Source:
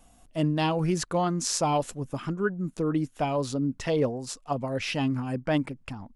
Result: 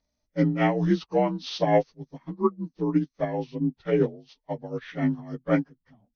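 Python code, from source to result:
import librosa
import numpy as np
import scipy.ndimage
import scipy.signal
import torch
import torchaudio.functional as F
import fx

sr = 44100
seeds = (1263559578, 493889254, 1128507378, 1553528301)

y = fx.partial_stretch(x, sr, pct=85)
y = fx.upward_expand(y, sr, threshold_db=-40.0, expansion=2.5)
y = F.gain(torch.from_numpy(y), 7.0).numpy()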